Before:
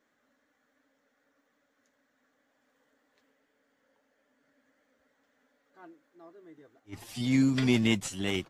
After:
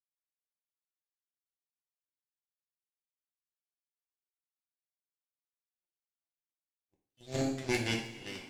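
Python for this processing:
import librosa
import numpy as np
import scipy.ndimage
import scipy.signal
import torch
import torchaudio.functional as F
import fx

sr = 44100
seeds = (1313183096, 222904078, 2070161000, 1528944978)

y = fx.spec_quant(x, sr, step_db=30)
y = fx.power_curve(y, sr, exponent=3.0)
y = fx.rev_double_slope(y, sr, seeds[0], early_s=0.48, late_s=3.6, knee_db=-19, drr_db=-1.5)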